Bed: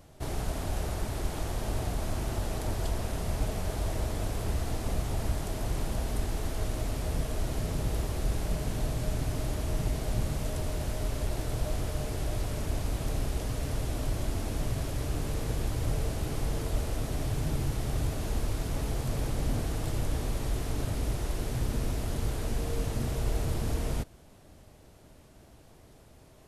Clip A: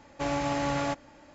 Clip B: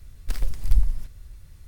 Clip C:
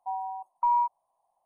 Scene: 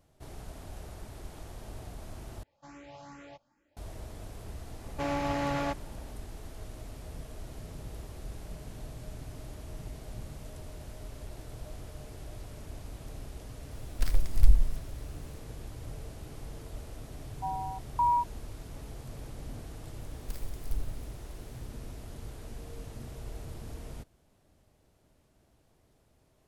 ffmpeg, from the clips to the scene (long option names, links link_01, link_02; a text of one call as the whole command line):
ffmpeg -i bed.wav -i cue0.wav -i cue1.wav -i cue2.wav -filter_complex "[1:a]asplit=2[link_01][link_02];[2:a]asplit=2[link_03][link_04];[0:a]volume=-12dB[link_05];[link_01]asplit=2[link_06][link_07];[link_07]afreqshift=2.4[link_08];[link_06][link_08]amix=inputs=2:normalize=1[link_09];[link_02]adynamicsmooth=sensitivity=7:basefreq=4300[link_10];[link_04]crystalizer=i=1.5:c=0[link_11];[link_05]asplit=2[link_12][link_13];[link_12]atrim=end=2.434[link_14];[link_09]atrim=end=1.34,asetpts=PTS-STARTPTS,volume=-17dB[link_15];[link_13]atrim=start=3.766[link_16];[link_10]atrim=end=1.34,asetpts=PTS-STARTPTS,volume=-2dB,afade=type=in:duration=0.004:curve=hsin,afade=type=out:start_time=1.336:duration=0.004:curve=hsin,adelay=4790[link_17];[link_03]atrim=end=1.67,asetpts=PTS-STARTPTS,volume=-1dB,afade=type=in:duration=0.004:curve=hsin,afade=type=out:start_time=1.666:duration=0.004:curve=hsin,adelay=13720[link_18];[3:a]atrim=end=1.45,asetpts=PTS-STARTPTS,volume=-2dB,afade=type=in:duration=0.004:curve=hsin,afade=type=out:start_time=1.446:duration=0.004:curve=hsin,adelay=17360[link_19];[link_11]atrim=end=1.67,asetpts=PTS-STARTPTS,volume=-14.5dB,afade=type=in:duration=0.004:curve=hsin,afade=type=out:start_time=1.666:duration=0.004:curve=hsin,adelay=20000[link_20];[link_14][link_15]acrossfade=duration=0.004:curve1=hsin:curve2=hsin[link_21];[link_21][link_16]acrossfade=duration=0.004:curve1=hsin:curve2=hsin[link_22];[link_22][link_17][link_18][link_19][link_20]amix=inputs=5:normalize=0" out.wav